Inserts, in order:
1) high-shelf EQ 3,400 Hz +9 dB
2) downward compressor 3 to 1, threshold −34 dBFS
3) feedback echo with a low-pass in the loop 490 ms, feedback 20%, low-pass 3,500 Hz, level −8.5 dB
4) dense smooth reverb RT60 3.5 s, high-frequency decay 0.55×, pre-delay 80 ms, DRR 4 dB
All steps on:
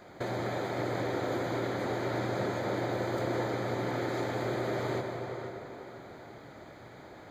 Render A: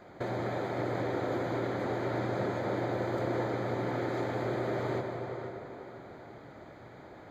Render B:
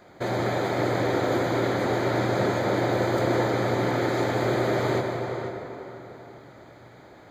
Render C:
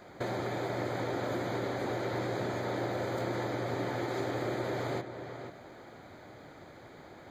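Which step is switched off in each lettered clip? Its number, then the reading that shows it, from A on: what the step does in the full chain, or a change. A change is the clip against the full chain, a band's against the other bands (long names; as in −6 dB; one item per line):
1, 4 kHz band −4.5 dB
2, average gain reduction 5.5 dB
4, echo-to-direct ratio −2.5 dB to −9.0 dB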